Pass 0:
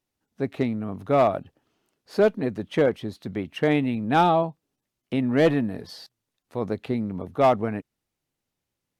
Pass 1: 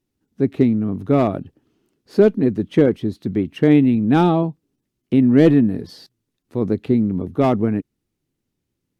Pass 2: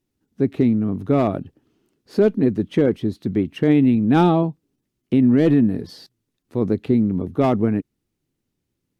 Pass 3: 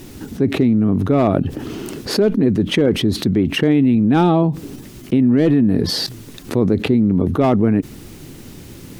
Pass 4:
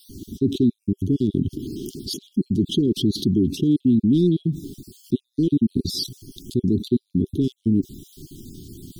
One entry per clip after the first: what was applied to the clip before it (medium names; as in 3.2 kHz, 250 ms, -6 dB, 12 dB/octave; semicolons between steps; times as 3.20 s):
resonant low shelf 470 Hz +8.5 dB, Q 1.5
peak limiter -7 dBFS, peak gain reduction 5 dB
level flattener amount 70%
random holes in the spectrogram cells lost 31%; Chebyshev band-stop 390–3200 Hz, order 5; trim -2 dB